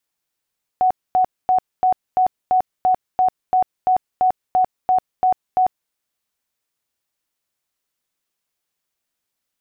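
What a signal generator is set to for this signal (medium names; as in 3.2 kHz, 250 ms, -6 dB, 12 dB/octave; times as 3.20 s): tone bursts 742 Hz, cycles 71, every 0.34 s, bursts 15, -12 dBFS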